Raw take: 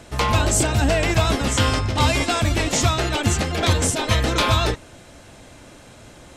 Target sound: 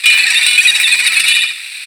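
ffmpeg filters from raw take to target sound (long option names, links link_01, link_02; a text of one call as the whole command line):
ffmpeg -i in.wav -filter_complex "[0:a]aresample=16000,aresample=44100,acrusher=bits=6:mix=0:aa=0.000001,aeval=exprs='0.501*(cos(1*acos(clip(val(0)/0.501,-1,1)))-cos(1*PI/2))+0.126*(cos(2*acos(clip(val(0)/0.501,-1,1)))-cos(2*PI/2))+0.0141*(cos(3*acos(clip(val(0)/0.501,-1,1)))-cos(3*PI/2))':channel_layout=same,asubboost=boost=5:cutoff=52,asplit=2[link_01][link_02];[link_02]adelay=233,lowpass=frequency=3500:poles=1,volume=-5dB,asplit=2[link_03][link_04];[link_04]adelay=233,lowpass=frequency=3500:poles=1,volume=0.3,asplit=2[link_05][link_06];[link_06]adelay=233,lowpass=frequency=3500:poles=1,volume=0.3,asplit=2[link_07][link_08];[link_08]adelay=233,lowpass=frequency=3500:poles=1,volume=0.3[link_09];[link_03][link_05][link_07][link_09]amix=inputs=4:normalize=0[link_10];[link_01][link_10]amix=inputs=2:normalize=0,acompressor=threshold=-21dB:ratio=6,asetrate=36028,aresample=44100,atempo=1.22405,asplit=3[link_11][link_12][link_13];[link_11]bandpass=frequency=730:width_type=q:width=8,volume=0dB[link_14];[link_12]bandpass=frequency=1090:width_type=q:width=8,volume=-6dB[link_15];[link_13]bandpass=frequency=2440:width_type=q:width=8,volume=-9dB[link_16];[link_14][link_15][link_16]amix=inputs=3:normalize=0,acrossover=split=580 3900:gain=0.1 1 0.0708[link_17][link_18][link_19];[link_17][link_18][link_19]amix=inputs=3:normalize=0,asetrate=150822,aresample=44100,apsyclip=34.5dB,volume=-1.5dB" out.wav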